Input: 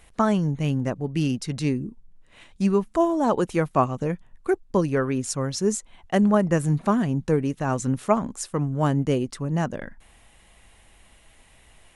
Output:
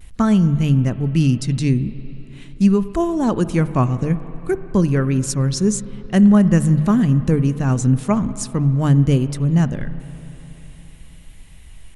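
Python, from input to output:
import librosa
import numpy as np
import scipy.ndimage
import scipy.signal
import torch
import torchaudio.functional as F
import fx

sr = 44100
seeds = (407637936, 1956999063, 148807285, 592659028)

y = fx.peak_eq(x, sr, hz=680.0, db=-8.5, octaves=2.3)
y = fx.hum_notches(y, sr, base_hz=50, count=3)
y = fx.rev_spring(y, sr, rt60_s=3.6, pass_ms=(42, 53, 58), chirp_ms=50, drr_db=13.5)
y = fx.vibrato(y, sr, rate_hz=0.46, depth_cents=29.0)
y = fx.low_shelf(y, sr, hz=190.0, db=12.0)
y = y * 10.0 ** (5.0 / 20.0)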